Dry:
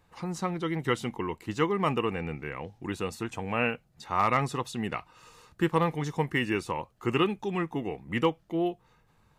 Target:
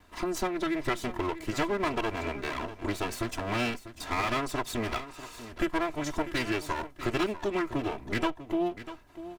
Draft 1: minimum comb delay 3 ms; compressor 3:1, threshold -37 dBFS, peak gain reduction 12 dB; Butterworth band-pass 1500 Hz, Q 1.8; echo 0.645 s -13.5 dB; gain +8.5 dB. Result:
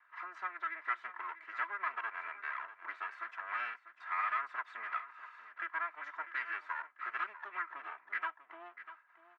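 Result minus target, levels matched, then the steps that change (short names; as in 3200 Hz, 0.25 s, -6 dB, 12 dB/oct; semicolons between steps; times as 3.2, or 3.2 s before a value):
2000 Hz band +5.5 dB
remove: Butterworth band-pass 1500 Hz, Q 1.8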